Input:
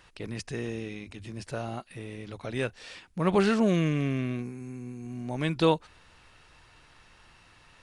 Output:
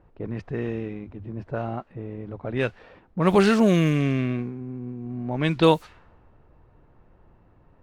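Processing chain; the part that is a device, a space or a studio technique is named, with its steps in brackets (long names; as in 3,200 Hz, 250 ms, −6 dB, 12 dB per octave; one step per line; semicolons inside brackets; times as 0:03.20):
cassette deck with a dynamic noise filter (white noise bed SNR 29 dB; low-pass that shuts in the quiet parts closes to 520 Hz, open at −21 dBFS)
level +5.5 dB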